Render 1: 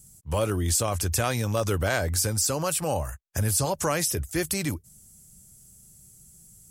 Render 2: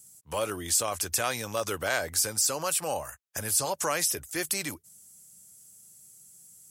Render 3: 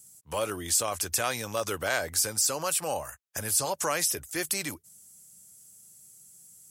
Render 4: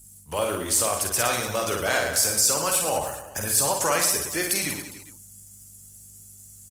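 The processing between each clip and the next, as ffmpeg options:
-af "highpass=f=660:p=1"
-af anull
-filter_complex "[0:a]aeval=exprs='val(0)+0.00126*(sin(2*PI*50*n/s)+sin(2*PI*2*50*n/s)/2+sin(2*PI*3*50*n/s)/3+sin(2*PI*4*50*n/s)/4+sin(2*PI*5*50*n/s)/5)':c=same,asplit=2[a][b];[b]aecho=0:1:50|112.5|190.6|288.3|410.4:0.631|0.398|0.251|0.158|0.1[c];[a][c]amix=inputs=2:normalize=0,volume=3.5dB" -ar 48000 -c:a libopus -b:a 24k

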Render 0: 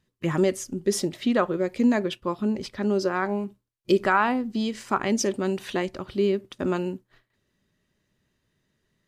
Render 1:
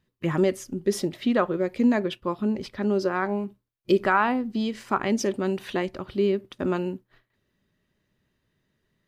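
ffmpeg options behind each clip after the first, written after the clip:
-af "equalizer=f=7.4k:t=o:w=1.2:g=-6.5"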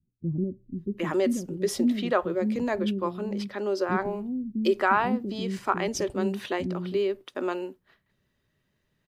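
-filter_complex "[0:a]adynamicequalizer=threshold=0.00891:dfrequency=2100:dqfactor=0.85:tfrequency=2100:tqfactor=0.85:attack=5:release=100:ratio=0.375:range=2.5:mode=cutabove:tftype=bell,acrossover=split=290[a][b];[b]adelay=760[c];[a][c]amix=inputs=2:normalize=0"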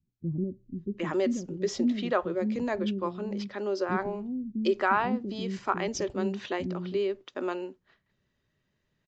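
-af "aresample=16000,aresample=44100,volume=-2.5dB"

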